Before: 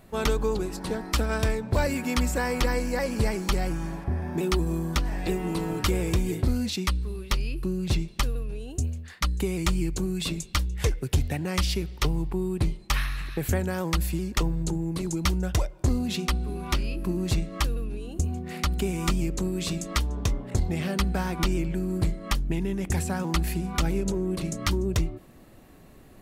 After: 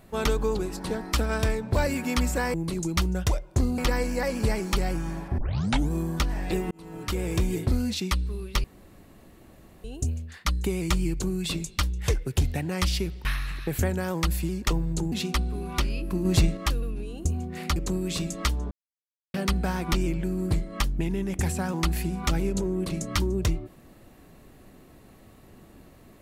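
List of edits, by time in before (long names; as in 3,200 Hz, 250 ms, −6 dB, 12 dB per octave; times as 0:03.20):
0:04.14: tape start 0.53 s
0:05.47–0:06.18: fade in
0:07.40–0:08.60: fill with room tone
0:12.01–0:12.95: remove
0:14.82–0:16.06: move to 0:02.54
0:17.19–0:17.51: clip gain +5 dB
0:18.70–0:19.27: remove
0:20.22–0:20.85: silence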